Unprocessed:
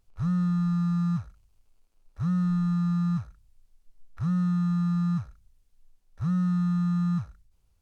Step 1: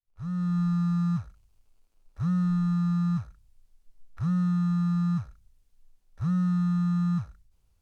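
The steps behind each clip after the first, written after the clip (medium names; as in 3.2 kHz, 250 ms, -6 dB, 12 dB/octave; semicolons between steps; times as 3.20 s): fade-in on the opening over 0.59 s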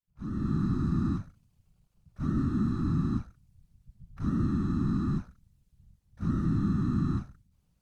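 whisper effect; trim -2.5 dB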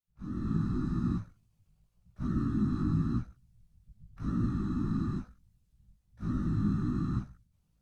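chorus voices 2, 0.9 Hz, delay 18 ms, depth 2 ms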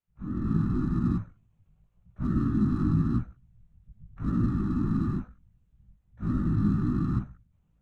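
local Wiener filter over 9 samples; trim +4.5 dB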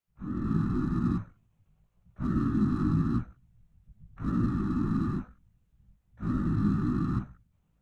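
bass shelf 230 Hz -6 dB; trim +2 dB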